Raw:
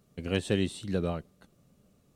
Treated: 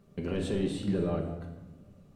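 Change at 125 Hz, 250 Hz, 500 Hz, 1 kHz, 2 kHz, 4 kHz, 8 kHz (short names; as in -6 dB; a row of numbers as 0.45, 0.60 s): 0.0, +1.0, 0.0, -0.5, -7.0, -6.0, -4.5 dB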